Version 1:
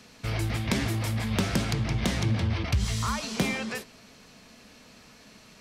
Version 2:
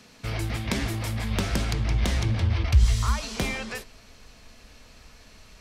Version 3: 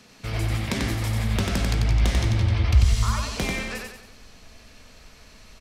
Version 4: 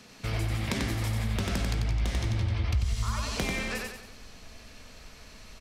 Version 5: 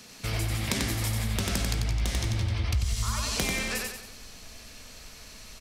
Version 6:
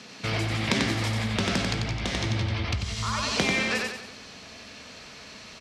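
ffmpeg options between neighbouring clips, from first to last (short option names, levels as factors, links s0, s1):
-af "asubboost=boost=11.5:cutoff=56"
-af "aecho=1:1:92|184|276|368|460:0.668|0.287|0.124|0.0531|0.0228"
-af "acompressor=threshold=0.0447:ratio=3"
-af "highshelf=f=4600:g=11"
-af "highpass=130,lowpass=4400,volume=2"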